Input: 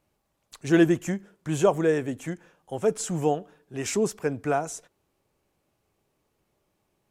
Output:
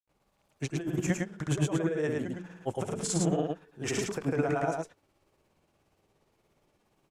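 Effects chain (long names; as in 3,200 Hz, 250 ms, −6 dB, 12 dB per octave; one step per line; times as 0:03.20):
high-shelf EQ 9,400 Hz −7.5 dB
mains-hum notches 60/120/180/240/300/360 Hz
compressor whose output falls as the input rises −28 dBFS, ratio −1
granular cloud, grains 17 per second, spray 100 ms, pitch spread up and down by 0 semitones
single-tap delay 108 ms −3 dB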